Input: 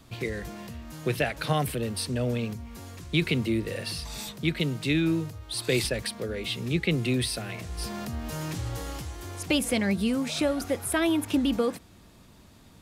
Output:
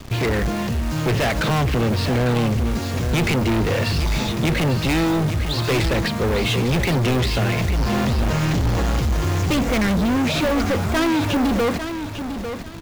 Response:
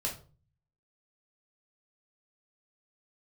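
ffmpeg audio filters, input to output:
-filter_complex "[0:a]lowshelf=frequency=72:gain=8,acrossover=split=3000[link_01][link_02];[link_02]acompressor=threshold=-43dB:ratio=4:attack=1:release=60[link_03];[link_01][link_03]amix=inputs=2:normalize=0,highshelf=frequency=4500:gain=-6,aresample=16000,aeval=exprs='sgn(val(0))*max(abs(val(0))-0.00168,0)':channel_layout=same,aresample=44100,acrusher=bits=3:mode=log:mix=0:aa=0.000001,apsyclip=22.5dB,volume=14dB,asoftclip=hard,volume=-14dB,asplit=2[link_04][link_05];[link_05]aecho=0:1:849|1698|2547:0.355|0.0852|0.0204[link_06];[link_04][link_06]amix=inputs=2:normalize=0,volume=-4dB"

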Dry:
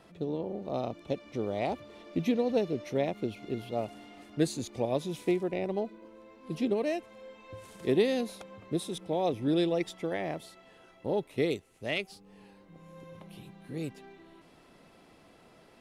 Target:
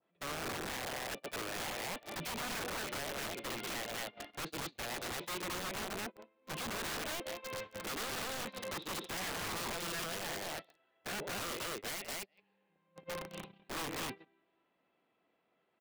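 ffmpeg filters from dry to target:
ffmpeg -i in.wav -filter_complex "[0:a]asplit=2[link_01][link_02];[link_02]asoftclip=type=hard:threshold=-30dB,volume=-4dB[link_03];[link_01][link_03]amix=inputs=2:normalize=0,highpass=frequency=410:poles=1,asplit=2[link_04][link_05];[link_05]aecho=0:1:56|124|219|394:0.158|0.335|0.708|0.106[link_06];[link_04][link_06]amix=inputs=2:normalize=0,adynamicequalizer=threshold=0.00708:dfrequency=2700:dqfactor=0.83:tfrequency=2700:tqfactor=0.83:attack=5:release=100:ratio=0.375:range=2:mode=boostabove:tftype=bell,acompressor=threshold=-37dB:ratio=10,lowpass=frequency=3500:width=0.5412,lowpass=frequency=3500:width=1.3066,aeval=exprs='(mod(79.4*val(0)+1,2)-1)/79.4':channel_layout=same,agate=range=-40dB:threshold=-43dB:ratio=16:detection=peak,alimiter=level_in=26.5dB:limit=-24dB:level=0:latency=1:release=40,volume=-26.5dB,volume=16dB" out.wav

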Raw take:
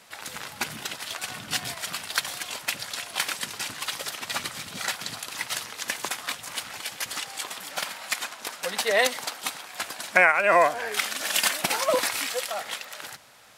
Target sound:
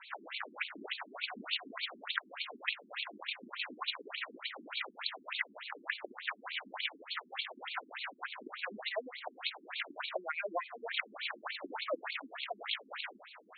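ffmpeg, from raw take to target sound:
ffmpeg -i in.wav -af "acompressor=threshold=-36dB:ratio=5,afftfilt=real='re*between(b*sr/1024,260*pow(3200/260,0.5+0.5*sin(2*PI*3.4*pts/sr))/1.41,260*pow(3200/260,0.5+0.5*sin(2*PI*3.4*pts/sr))*1.41)':imag='im*between(b*sr/1024,260*pow(3200/260,0.5+0.5*sin(2*PI*3.4*pts/sr))/1.41,260*pow(3200/260,0.5+0.5*sin(2*PI*3.4*pts/sr))*1.41)':win_size=1024:overlap=0.75,volume=6.5dB" out.wav

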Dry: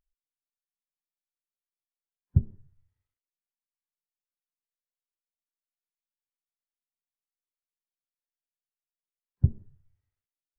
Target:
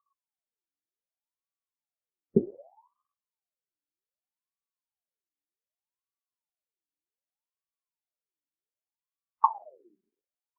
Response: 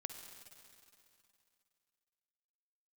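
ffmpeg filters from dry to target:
-af "lowshelf=frequency=140:gain=10.5,aeval=exprs='val(0)*sin(2*PI*720*n/s+720*0.6/0.65*sin(2*PI*0.65*n/s))':channel_layout=same,volume=-5.5dB"

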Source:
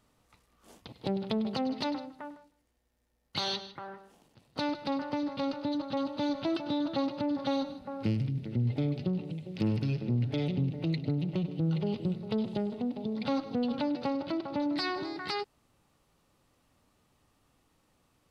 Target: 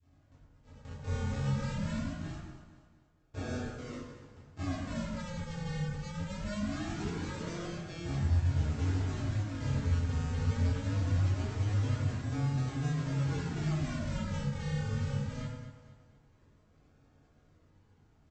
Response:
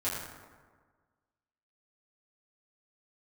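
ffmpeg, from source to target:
-filter_complex "[0:a]firequalizer=gain_entry='entry(230,0);entry(2700,-3);entry(6100,-14)':delay=0.05:min_phase=1,asetrate=27781,aresample=44100,atempo=1.5874,acrossover=split=520|1300[link_01][link_02][link_03];[link_02]acompressor=threshold=-53dB:ratio=6[link_04];[link_01][link_04][link_03]amix=inputs=3:normalize=0,asoftclip=type=tanh:threshold=-37.5dB,aresample=16000,acrusher=samples=32:mix=1:aa=0.000001:lfo=1:lforange=32:lforate=0.22,aresample=44100,aecho=1:1:236|472|708|944:0.2|0.0818|0.0335|0.0138,adynamicequalizer=threshold=0.00141:dfrequency=790:dqfactor=0.83:tfrequency=790:tqfactor=0.83:attack=5:release=100:ratio=0.375:range=2.5:mode=cutabove:tftype=bell[link_05];[1:a]atrim=start_sample=2205,afade=type=out:start_time=0.33:duration=0.01,atrim=end_sample=14994[link_06];[link_05][link_06]afir=irnorm=-1:irlink=0" -ar 32000 -c:a libmp3lame -b:a 64k

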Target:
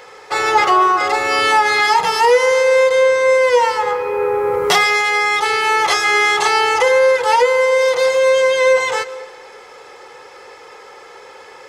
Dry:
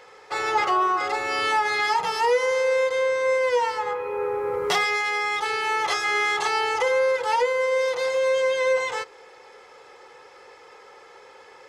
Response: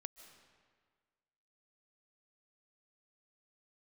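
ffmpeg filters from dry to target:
-filter_complex "[0:a]asplit=2[link_01][link_02];[1:a]atrim=start_sample=2205,highshelf=frequency=7300:gain=10.5[link_03];[link_02][link_03]afir=irnorm=-1:irlink=0,volume=1.5dB[link_04];[link_01][link_04]amix=inputs=2:normalize=0,volume=4.5dB"

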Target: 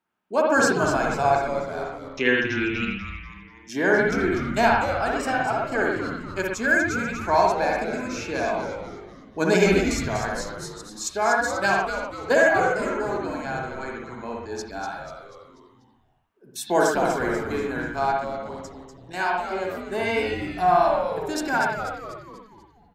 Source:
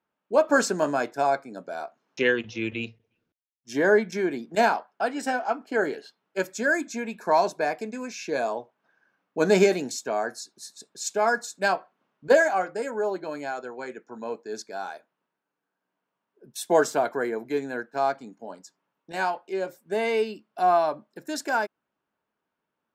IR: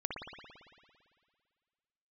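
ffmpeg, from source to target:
-filter_complex "[0:a]equalizer=frequency=510:width=2:gain=-6.5,bandreject=frequency=71.21:width_type=h:width=4,bandreject=frequency=142.42:width_type=h:width=4,bandreject=frequency=213.63:width_type=h:width=4,bandreject=frequency=284.84:width_type=h:width=4,asplit=6[link_01][link_02][link_03][link_04][link_05][link_06];[link_02]adelay=244,afreqshift=-140,volume=-8dB[link_07];[link_03]adelay=488,afreqshift=-280,volume=-14.6dB[link_08];[link_04]adelay=732,afreqshift=-420,volume=-21.1dB[link_09];[link_05]adelay=976,afreqshift=-560,volume=-27.7dB[link_10];[link_06]adelay=1220,afreqshift=-700,volume=-34.2dB[link_11];[link_01][link_07][link_08][link_09][link_10][link_11]amix=inputs=6:normalize=0[link_12];[1:a]atrim=start_sample=2205,atrim=end_sample=6615[link_13];[link_12][link_13]afir=irnorm=-1:irlink=0,volume=3dB"

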